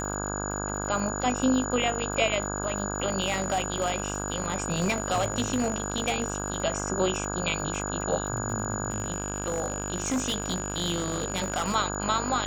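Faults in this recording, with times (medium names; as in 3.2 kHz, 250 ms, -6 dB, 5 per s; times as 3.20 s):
buzz 50 Hz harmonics 33 -33 dBFS
crackle 67 per s -35 dBFS
whine 6.9 kHz -35 dBFS
3.20–6.64 s: clipped -20.5 dBFS
8.90–11.76 s: clipped -23 dBFS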